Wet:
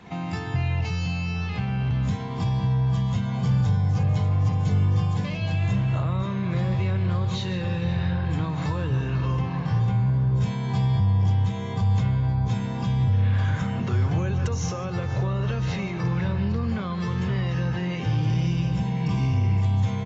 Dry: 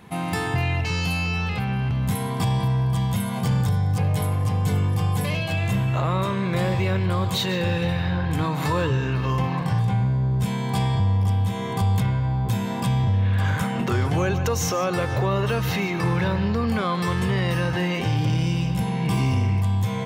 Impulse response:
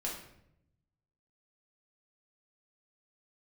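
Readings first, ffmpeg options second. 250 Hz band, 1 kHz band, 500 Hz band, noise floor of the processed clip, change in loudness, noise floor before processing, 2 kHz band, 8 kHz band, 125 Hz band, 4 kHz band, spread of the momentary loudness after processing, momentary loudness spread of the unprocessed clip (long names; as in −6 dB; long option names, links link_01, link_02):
−2.5 dB, −6.5 dB, −7.0 dB, −30 dBFS, −1.5 dB, −27 dBFS, −7.0 dB, can't be measured, 0.0 dB, −7.0 dB, 5 LU, 3 LU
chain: -filter_complex "[0:a]asplit=2[link_01][link_02];[link_02]adelay=514,lowpass=frequency=1900:poles=1,volume=-12.5dB,asplit=2[link_03][link_04];[link_04]adelay=514,lowpass=frequency=1900:poles=1,volume=0.48,asplit=2[link_05][link_06];[link_06]adelay=514,lowpass=frequency=1900:poles=1,volume=0.48,asplit=2[link_07][link_08];[link_08]adelay=514,lowpass=frequency=1900:poles=1,volume=0.48,asplit=2[link_09][link_10];[link_10]adelay=514,lowpass=frequency=1900:poles=1,volume=0.48[link_11];[link_01][link_03][link_05][link_07][link_09][link_11]amix=inputs=6:normalize=0,acrossover=split=200[link_12][link_13];[link_13]acompressor=threshold=-35dB:ratio=3[link_14];[link_12][link_14]amix=inputs=2:normalize=0" -ar 16000 -c:a aac -b:a 24k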